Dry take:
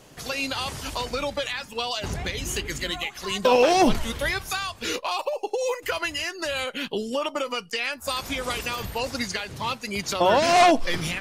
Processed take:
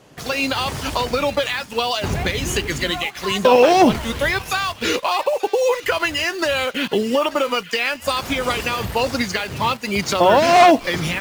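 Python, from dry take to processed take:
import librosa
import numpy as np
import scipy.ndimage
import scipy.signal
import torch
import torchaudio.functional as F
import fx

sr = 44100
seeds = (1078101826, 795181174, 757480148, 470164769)

p1 = fx.recorder_agc(x, sr, target_db=-14.0, rise_db_per_s=6.4, max_gain_db=30)
p2 = scipy.signal.sosfilt(scipy.signal.butter(2, 60.0, 'highpass', fs=sr, output='sos'), p1)
p3 = fx.high_shelf(p2, sr, hz=4300.0, db=-8.0)
p4 = fx.quant_dither(p3, sr, seeds[0], bits=6, dither='none')
p5 = p3 + (p4 * librosa.db_to_amplitude(-4.5))
p6 = fx.echo_wet_highpass(p5, sr, ms=886, feedback_pct=51, hz=1700.0, wet_db=-15.5)
y = p6 * librosa.db_to_amplitude(2.0)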